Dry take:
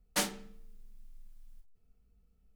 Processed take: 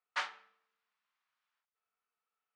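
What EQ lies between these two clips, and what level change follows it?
ladder band-pass 1400 Hz, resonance 35%; air absorption 93 m; tilt +2.5 dB/oct; +10.5 dB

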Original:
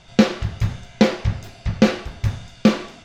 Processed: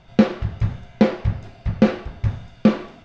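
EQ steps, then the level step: air absorption 91 m; high shelf 2200 Hz -8.5 dB; 0.0 dB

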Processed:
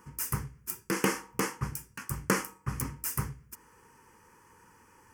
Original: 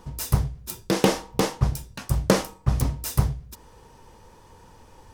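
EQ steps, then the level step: HPF 430 Hz 6 dB/oct; fixed phaser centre 1600 Hz, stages 4; 0.0 dB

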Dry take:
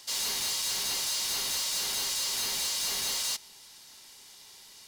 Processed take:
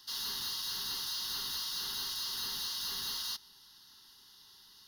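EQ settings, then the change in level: fixed phaser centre 2300 Hz, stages 6; -3.5 dB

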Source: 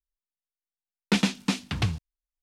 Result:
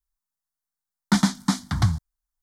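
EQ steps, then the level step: fixed phaser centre 1100 Hz, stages 4; +7.0 dB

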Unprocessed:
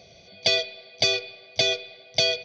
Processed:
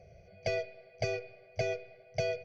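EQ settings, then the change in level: tilt -3 dB/oct; fixed phaser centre 1000 Hz, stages 6; -6.0 dB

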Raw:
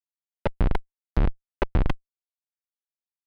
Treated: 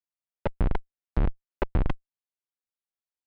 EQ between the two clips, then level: LPF 2700 Hz 6 dB/oct; -2.5 dB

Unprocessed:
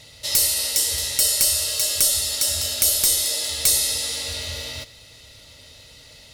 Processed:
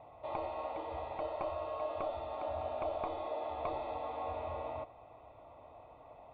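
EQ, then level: vocal tract filter a; bell 330 Hz +10 dB 0.42 oct; +15.0 dB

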